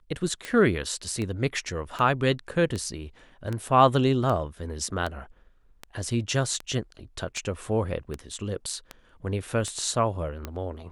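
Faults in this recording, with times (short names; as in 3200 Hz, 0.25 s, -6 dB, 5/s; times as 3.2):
tick 78 rpm -18 dBFS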